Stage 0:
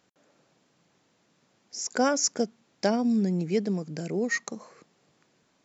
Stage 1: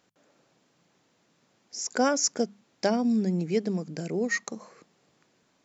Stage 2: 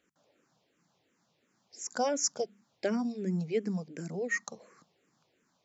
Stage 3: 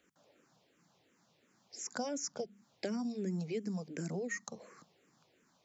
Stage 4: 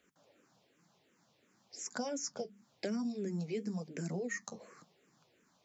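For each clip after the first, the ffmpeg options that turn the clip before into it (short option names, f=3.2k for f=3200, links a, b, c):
-af "bandreject=f=50:t=h:w=6,bandreject=f=100:t=h:w=6,bandreject=f=150:t=h:w=6,bandreject=f=200:t=h:w=6"
-filter_complex "[0:a]asplit=2[a][b];[b]afreqshift=-2.8[c];[a][c]amix=inputs=2:normalize=1,volume=-3dB"
-filter_complex "[0:a]acrossover=split=250|4600[a][b][c];[a]acompressor=threshold=-42dB:ratio=4[d];[b]acompressor=threshold=-43dB:ratio=4[e];[c]acompressor=threshold=-48dB:ratio=4[f];[d][e][f]amix=inputs=3:normalize=0,volume=2.5dB"
-af "flanger=delay=4.7:depth=5.5:regen=-54:speed=1:shape=sinusoidal,volume=4dB"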